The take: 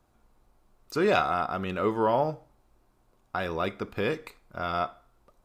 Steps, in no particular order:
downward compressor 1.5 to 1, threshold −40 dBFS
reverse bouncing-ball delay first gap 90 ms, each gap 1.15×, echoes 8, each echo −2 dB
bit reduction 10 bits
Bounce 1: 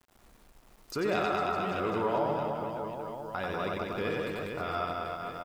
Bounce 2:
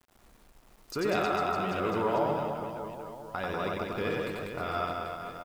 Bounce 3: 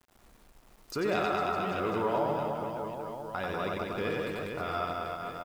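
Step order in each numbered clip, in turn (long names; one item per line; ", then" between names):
reverse bouncing-ball delay, then bit reduction, then downward compressor
downward compressor, then reverse bouncing-ball delay, then bit reduction
reverse bouncing-ball delay, then downward compressor, then bit reduction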